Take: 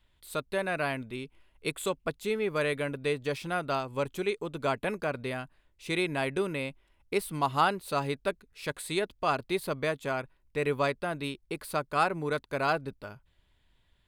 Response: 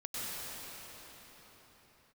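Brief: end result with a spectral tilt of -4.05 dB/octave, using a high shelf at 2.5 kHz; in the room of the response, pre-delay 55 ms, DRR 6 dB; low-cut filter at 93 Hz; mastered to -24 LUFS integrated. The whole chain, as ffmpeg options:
-filter_complex "[0:a]highpass=93,highshelf=f=2500:g=-3.5,asplit=2[s0][s1];[1:a]atrim=start_sample=2205,adelay=55[s2];[s1][s2]afir=irnorm=-1:irlink=0,volume=0.316[s3];[s0][s3]amix=inputs=2:normalize=0,volume=2.37"

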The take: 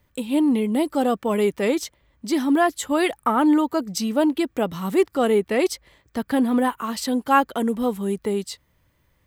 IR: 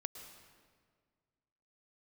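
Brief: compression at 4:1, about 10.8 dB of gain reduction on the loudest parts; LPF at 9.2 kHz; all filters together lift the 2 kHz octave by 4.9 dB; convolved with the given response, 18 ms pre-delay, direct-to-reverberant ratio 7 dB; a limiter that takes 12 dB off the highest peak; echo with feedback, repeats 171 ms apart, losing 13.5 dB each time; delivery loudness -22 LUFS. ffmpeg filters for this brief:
-filter_complex "[0:a]lowpass=9200,equalizer=f=2000:t=o:g=6,acompressor=threshold=0.0631:ratio=4,alimiter=level_in=1.06:limit=0.0631:level=0:latency=1,volume=0.944,aecho=1:1:171|342:0.211|0.0444,asplit=2[s0][s1];[1:a]atrim=start_sample=2205,adelay=18[s2];[s1][s2]afir=irnorm=-1:irlink=0,volume=0.596[s3];[s0][s3]amix=inputs=2:normalize=0,volume=3.16"

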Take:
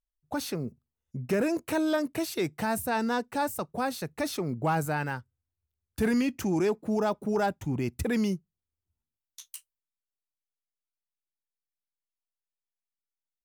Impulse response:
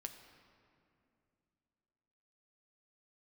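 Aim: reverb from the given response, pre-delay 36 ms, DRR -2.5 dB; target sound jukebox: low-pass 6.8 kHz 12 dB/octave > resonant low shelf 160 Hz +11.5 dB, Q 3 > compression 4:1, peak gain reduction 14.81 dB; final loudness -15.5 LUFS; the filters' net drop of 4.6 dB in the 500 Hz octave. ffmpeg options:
-filter_complex "[0:a]equalizer=f=500:t=o:g=-4,asplit=2[s0][s1];[1:a]atrim=start_sample=2205,adelay=36[s2];[s1][s2]afir=irnorm=-1:irlink=0,volume=2[s3];[s0][s3]amix=inputs=2:normalize=0,lowpass=6800,lowshelf=f=160:t=q:w=3:g=11.5,acompressor=threshold=0.0398:ratio=4,volume=6.68"

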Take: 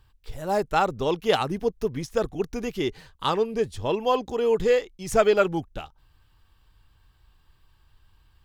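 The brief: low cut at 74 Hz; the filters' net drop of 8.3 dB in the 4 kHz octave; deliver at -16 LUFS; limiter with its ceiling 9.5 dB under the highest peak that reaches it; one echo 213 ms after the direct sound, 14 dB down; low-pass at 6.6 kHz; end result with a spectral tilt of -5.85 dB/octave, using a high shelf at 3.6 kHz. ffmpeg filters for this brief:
-af "highpass=74,lowpass=6600,highshelf=f=3600:g=-5,equalizer=f=4000:t=o:g=-8,alimiter=limit=0.126:level=0:latency=1,aecho=1:1:213:0.2,volume=4.47"

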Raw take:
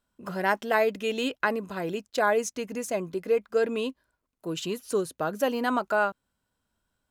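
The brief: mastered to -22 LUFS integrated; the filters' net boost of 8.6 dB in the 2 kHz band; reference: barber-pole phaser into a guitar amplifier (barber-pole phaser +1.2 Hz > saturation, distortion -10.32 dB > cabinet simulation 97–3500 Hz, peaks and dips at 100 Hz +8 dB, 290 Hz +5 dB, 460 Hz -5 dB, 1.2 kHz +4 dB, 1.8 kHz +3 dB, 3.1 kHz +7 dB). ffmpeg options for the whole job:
-filter_complex "[0:a]equalizer=f=2000:t=o:g=8.5,asplit=2[s0][s1];[s1]afreqshift=1.2[s2];[s0][s2]amix=inputs=2:normalize=1,asoftclip=threshold=0.0841,highpass=97,equalizer=f=100:t=q:w=4:g=8,equalizer=f=290:t=q:w=4:g=5,equalizer=f=460:t=q:w=4:g=-5,equalizer=f=1200:t=q:w=4:g=4,equalizer=f=1800:t=q:w=4:g=3,equalizer=f=3100:t=q:w=4:g=7,lowpass=f=3500:w=0.5412,lowpass=f=3500:w=1.3066,volume=2.66"

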